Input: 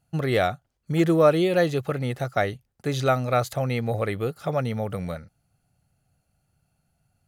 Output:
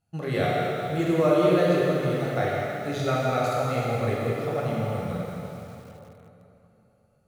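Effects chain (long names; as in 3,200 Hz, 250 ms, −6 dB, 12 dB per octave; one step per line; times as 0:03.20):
high-shelf EQ 12,000 Hz −6 dB
dense smooth reverb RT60 3.3 s, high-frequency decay 0.8×, DRR −6 dB
feedback echo at a low word length 167 ms, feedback 55%, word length 6 bits, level −11 dB
level −8 dB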